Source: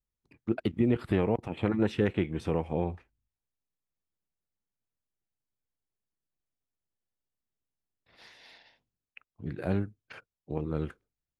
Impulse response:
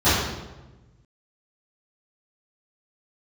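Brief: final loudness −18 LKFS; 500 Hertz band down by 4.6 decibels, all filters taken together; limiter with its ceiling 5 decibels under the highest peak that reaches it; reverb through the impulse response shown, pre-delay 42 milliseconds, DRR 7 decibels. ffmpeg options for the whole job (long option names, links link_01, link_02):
-filter_complex "[0:a]equalizer=frequency=500:width_type=o:gain=-6,alimiter=limit=-21dB:level=0:latency=1,asplit=2[link_01][link_02];[1:a]atrim=start_sample=2205,adelay=42[link_03];[link_02][link_03]afir=irnorm=-1:irlink=0,volume=-28.5dB[link_04];[link_01][link_04]amix=inputs=2:normalize=0,volume=14.5dB"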